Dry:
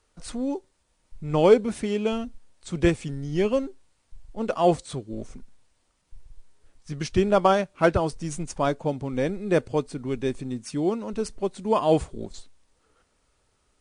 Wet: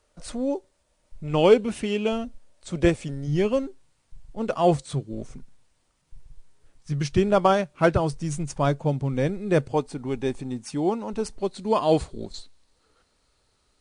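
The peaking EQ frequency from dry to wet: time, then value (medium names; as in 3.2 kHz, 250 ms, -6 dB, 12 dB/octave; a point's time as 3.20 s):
peaking EQ +9.5 dB 0.31 oct
590 Hz
from 1.28 s 2.8 kHz
from 2.08 s 590 Hz
from 3.27 s 140 Hz
from 9.70 s 830 Hz
from 11.38 s 4.2 kHz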